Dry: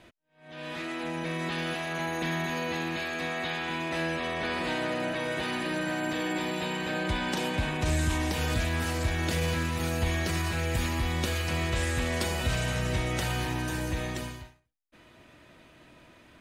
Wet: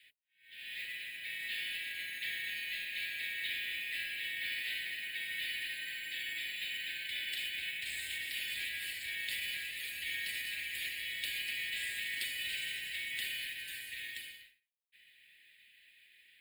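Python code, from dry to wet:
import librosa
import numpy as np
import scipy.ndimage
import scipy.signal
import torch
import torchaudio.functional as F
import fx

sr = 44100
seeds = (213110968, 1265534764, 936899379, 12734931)

y = scipy.signal.sosfilt(scipy.signal.ellip(4, 1.0, 40, 1800.0, 'highpass', fs=sr, output='sos'), x)
y = fx.mod_noise(y, sr, seeds[0], snr_db=13)
y = fx.fixed_phaser(y, sr, hz=2600.0, stages=4)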